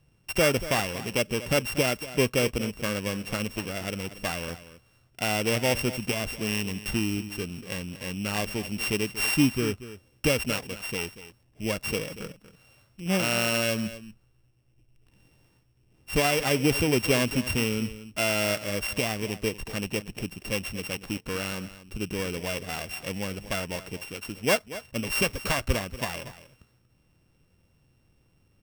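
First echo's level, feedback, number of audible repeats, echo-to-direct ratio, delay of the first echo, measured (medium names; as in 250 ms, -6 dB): -14.5 dB, no regular repeats, 1, -14.5 dB, 236 ms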